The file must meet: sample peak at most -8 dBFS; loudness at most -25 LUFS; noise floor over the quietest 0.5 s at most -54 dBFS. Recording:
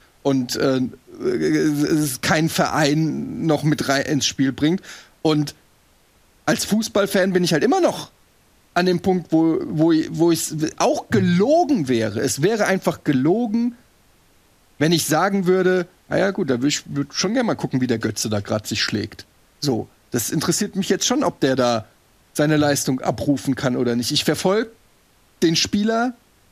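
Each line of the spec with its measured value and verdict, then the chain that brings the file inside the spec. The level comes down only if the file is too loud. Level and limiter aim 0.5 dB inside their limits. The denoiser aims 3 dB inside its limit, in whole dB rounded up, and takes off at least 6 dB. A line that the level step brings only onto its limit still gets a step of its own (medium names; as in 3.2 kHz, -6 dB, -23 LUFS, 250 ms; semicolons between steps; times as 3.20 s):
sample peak -5.5 dBFS: fail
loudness -20.0 LUFS: fail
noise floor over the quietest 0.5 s -56 dBFS: pass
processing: trim -5.5 dB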